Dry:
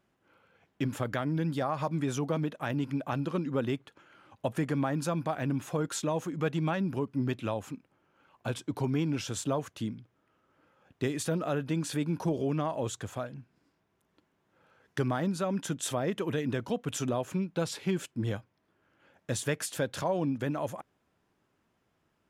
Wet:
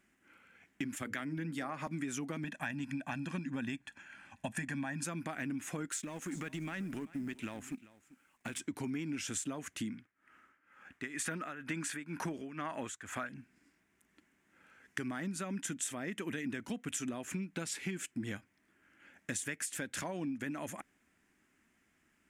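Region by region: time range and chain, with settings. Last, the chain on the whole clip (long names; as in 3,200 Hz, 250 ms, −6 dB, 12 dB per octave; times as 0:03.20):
0:00.95–0:01.87: mains-hum notches 60/120/180/240/300/360/420/480/540 Hz + multiband upward and downward expander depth 100%
0:02.44–0:05.04: low-pass filter 11,000 Hz + notch filter 310 Hz, Q 9.8 + comb filter 1.2 ms
0:05.90–0:08.60: mu-law and A-law mismatch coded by A + downward compressor, threshold −33 dBFS + single-tap delay 391 ms −20 dB
0:09.90–0:13.29: parametric band 1,400 Hz +10 dB 1.8 octaves + amplitude tremolo 2.1 Hz, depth 88%
whole clip: octave-band graphic EQ 125/250/500/1,000/2,000/4,000/8,000 Hz −10/+6/−9/−6/+10/−6/+9 dB; downward compressor, threshold −37 dBFS; level +1.5 dB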